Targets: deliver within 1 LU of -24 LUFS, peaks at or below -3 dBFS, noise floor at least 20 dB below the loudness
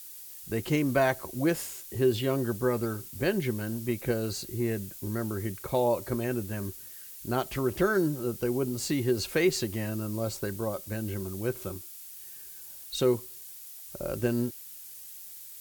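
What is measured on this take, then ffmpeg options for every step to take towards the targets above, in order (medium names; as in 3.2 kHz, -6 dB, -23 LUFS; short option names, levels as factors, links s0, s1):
noise floor -46 dBFS; noise floor target -50 dBFS; loudness -30.0 LUFS; peak level -14.0 dBFS; loudness target -24.0 LUFS
-> -af "afftdn=nr=6:nf=-46"
-af "volume=2"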